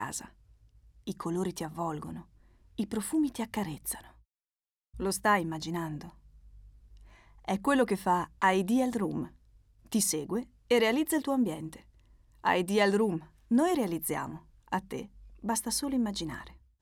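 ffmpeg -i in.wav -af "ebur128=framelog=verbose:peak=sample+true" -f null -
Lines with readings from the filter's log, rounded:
Integrated loudness:
  I:         -30.7 LUFS
  Threshold: -41.9 LUFS
Loudness range:
  LRA:         6.1 LU
  Threshold: -51.6 LUFS
  LRA low:   -35.6 LUFS
  LRA high:  -29.5 LUFS
Sample peak:
  Peak:      -12.8 dBFS
True peak:
  Peak:      -12.8 dBFS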